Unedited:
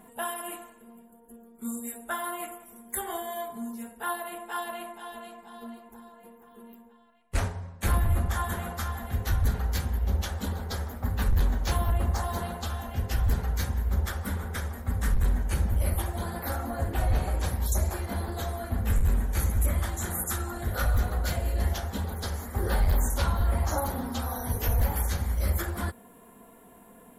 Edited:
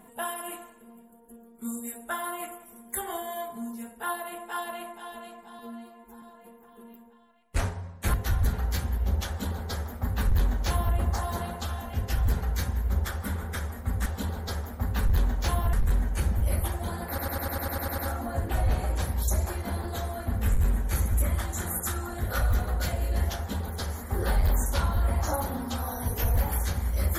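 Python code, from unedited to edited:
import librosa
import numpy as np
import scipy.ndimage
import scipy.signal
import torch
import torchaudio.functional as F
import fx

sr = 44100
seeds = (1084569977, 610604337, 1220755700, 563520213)

y = fx.edit(x, sr, fx.stretch_span(start_s=5.59, length_s=0.42, factor=1.5),
    fx.cut(start_s=7.93, length_s=1.22),
    fx.duplicate(start_s=10.29, length_s=1.67, to_s=15.07),
    fx.stutter(start_s=16.42, slice_s=0.1, count=10), tone=tone)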